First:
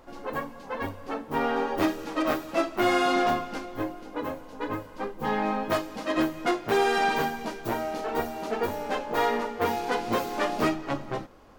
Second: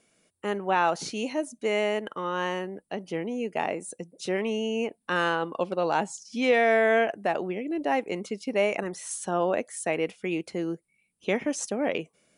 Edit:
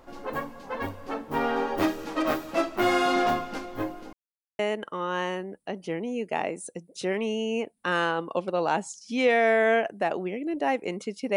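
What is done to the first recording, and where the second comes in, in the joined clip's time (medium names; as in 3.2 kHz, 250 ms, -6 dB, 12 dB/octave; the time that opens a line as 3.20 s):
first
4.13–4.59 s: mute
4.59 s: go over to second from 1.83 s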